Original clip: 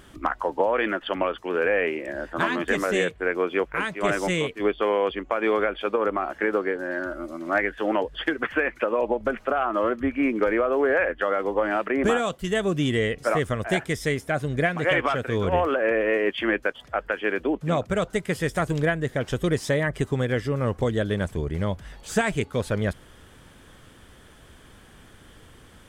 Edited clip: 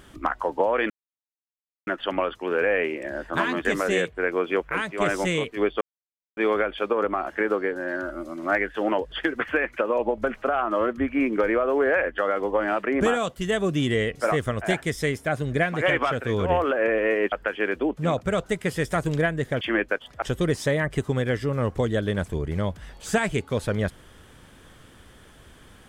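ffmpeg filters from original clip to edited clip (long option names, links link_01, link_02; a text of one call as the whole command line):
ffmpeg -i in.wav -filter_complex "[0:a]asplit=7[link_01][link_02][link_03][link_04][link_05][link_06][link_07];[link_01]atrim=end=0.9,asetpts=PTS-STARTPTS,afade=type=out:start_time=0.896:duration=0.004:curve=hsin,apad=pad_dur=0.97[link_08];[link_02]atrim=start=0.9:end=4.84,asetpts=PTS-STARTPTS,afade=type=in:duration=0.004:curve=hsin,afade=type=out:start_time=3.936:duration=0.004:curve=hsin[link_09];[link_03]atrim=start=4.84:end=5.4,asetpts=PTS-STARTPTS,volume=0[link_10];[link_04]atrim=start=5.4:end=16.352,asetpts=PTS-STARTPTS,afade=type=in:duration=0.004:curve=hsin[link_11];[link_05]atrim=start=16.958:end=19.252[link_12];[link_06]atrim=start=16.348:end=16.962[link_13];[link_07]atrim=start=19.248[link_14];[link_08][link_09][link_10][link_11]concat=n=4:v=0:a=1[link_15];[link_15][link_12]acrossfade=duration=0.004:curve1=hsin:curve2=hsin[link_16];[link_16][link_13]acrossfade=duration=0.004:curve1=hsin:curve2=hsin[link_17];[link_17][link_14]acrossfade=duration=0.004:curve1=hsin:curve2=hsin" out.wav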